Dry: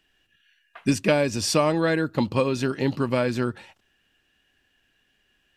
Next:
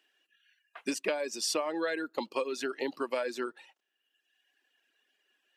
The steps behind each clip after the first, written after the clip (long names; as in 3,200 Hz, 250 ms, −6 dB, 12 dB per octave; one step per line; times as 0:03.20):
high-pass filter 320 Hz 24 dB per octave
reverb reduction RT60 1.2 s
downward compressor 6 to 1, threshold −24 dBFS, peak gain reduction 8 dB
level −3.5 dB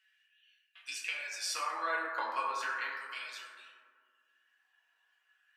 auto-filter high-pass sine 0.36 Hz 970–3,100 Hz
convolution reverb RT60 1.9 s, pre-delay 5 ms, DRR −6.5 dB
level −8 dB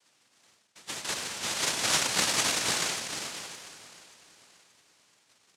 hollow resonant body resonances 1,000/1,400 Hz, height 14 dB, ringing for 85 ms
cochlear-implant simulation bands 1
repeating echo 578 ms, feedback 43%, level −18 dB
level +4.5 dB